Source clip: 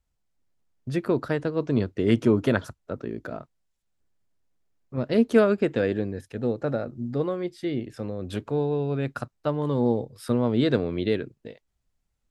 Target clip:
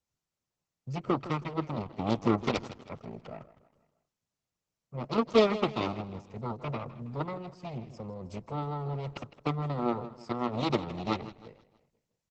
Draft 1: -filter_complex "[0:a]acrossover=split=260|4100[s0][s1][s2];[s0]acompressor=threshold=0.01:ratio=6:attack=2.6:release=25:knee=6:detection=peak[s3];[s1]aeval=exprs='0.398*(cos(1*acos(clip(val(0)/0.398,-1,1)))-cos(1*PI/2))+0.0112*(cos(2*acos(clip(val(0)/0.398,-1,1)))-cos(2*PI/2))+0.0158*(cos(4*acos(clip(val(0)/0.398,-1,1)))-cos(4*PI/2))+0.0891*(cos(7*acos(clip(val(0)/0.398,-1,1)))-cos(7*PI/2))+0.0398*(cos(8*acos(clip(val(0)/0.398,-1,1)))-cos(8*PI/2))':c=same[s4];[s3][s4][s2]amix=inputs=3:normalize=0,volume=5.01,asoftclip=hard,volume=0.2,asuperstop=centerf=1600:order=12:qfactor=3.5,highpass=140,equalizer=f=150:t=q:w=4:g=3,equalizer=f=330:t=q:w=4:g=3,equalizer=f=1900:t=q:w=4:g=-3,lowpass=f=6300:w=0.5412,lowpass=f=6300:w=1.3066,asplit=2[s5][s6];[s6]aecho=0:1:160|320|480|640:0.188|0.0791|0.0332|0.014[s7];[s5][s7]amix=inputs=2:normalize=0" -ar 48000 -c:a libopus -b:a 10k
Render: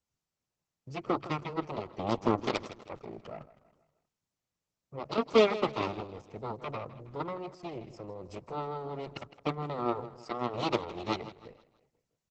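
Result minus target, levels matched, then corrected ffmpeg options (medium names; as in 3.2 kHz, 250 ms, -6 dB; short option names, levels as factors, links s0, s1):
compression: peak gain reduction +9.5 dB
-filter_complex "[0:a]acrossover=split=260|4100[s0][s1][s2];[s0]acompressor=threshold=0.0376:ratio=6:attack=2.6:release=25:knee=6:detection=peak[s3];[s1]aeval=exprs='0.398*(cos(1*acos(clip(val(0)/0.398,-1,1)))-cos(1*PI/2))+0.0112*(cos(2*acos(clip(val(0)/0.398,-1,1)))-cos(2*PI/2))+0.0158*(cos(4*acos(clip(val(0)/0.398,-1,1)))-cos(4*PI/2))+0.0891*(cos(7*acos(clip(val(0)/0.398,-1,1)))-cos(7*PI/2))+0.0398*(cos(8*acos(clip(val(0)/0.398,-1,1)))-cos(8*PI/2))':c=same[s4];[s3][s4][s2]amix=inputs=3:normalize=0,volume=5.01,asoftclip=hard,volume=0.2,asuperstop=centerf=1600:order=12:qfactor=3.5,highpass=140,equalizer=f=150:t=q:w=4:g=3,equalizer=f=330:t=q:w=4:g=3,equalizer=f=1900:t=q:w=4:g=-3,lowpass=f=6300:w=0.5412,lowpass=f=6300:w=1.3066,asplit=2[s5][s6];[s6]aecho=0:1:160|320|480|640:0.188|0.0791|0.0332|0.014[s7];[s5][s7]amix=inputs=2:normalize=0" -ar 48000 -c:a libopus -b:a 10k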